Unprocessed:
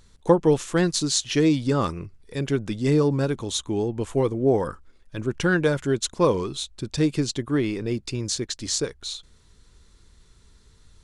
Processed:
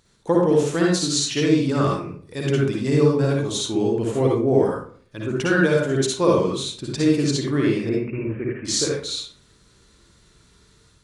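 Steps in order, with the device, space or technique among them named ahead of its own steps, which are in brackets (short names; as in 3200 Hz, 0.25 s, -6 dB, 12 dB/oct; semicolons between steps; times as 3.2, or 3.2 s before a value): 7.89–8.65 steep low-pass 2600 Hz 96 dB/oct; far laptop microphone (reverb RT60 0.45 s, pre-delay 50 ms, DRR -3 dB; HPF 140 Hz 6 dB/oct; AGC gain up to 4.5 dB); gain -3.5 dB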